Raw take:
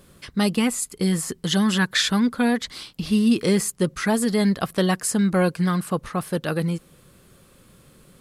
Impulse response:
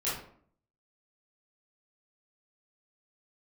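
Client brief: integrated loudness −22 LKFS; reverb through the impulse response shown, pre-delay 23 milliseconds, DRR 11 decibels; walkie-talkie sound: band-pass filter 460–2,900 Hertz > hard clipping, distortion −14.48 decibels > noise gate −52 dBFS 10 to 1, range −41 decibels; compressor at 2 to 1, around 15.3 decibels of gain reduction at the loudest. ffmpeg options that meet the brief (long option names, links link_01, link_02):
-filter_complex "[0:a]acompressor=threshold=-45dB:ratio=2,asplit=2[link_01][link_02];[1:a]atrim=start_sample=2205,adelay=23[link_03];[link_02][link_03]afir=irnorm=-1:irlink=0,volume=-17.5dB[link_04];[link_01][link_04]amix=inputs=2:normalize=0,highpass=460,lowpass=2900,asoftclip=type=hard:threshold=-35dB,agate=range=-41dB:threshold=-52dB:ratio=10,volume=22dB"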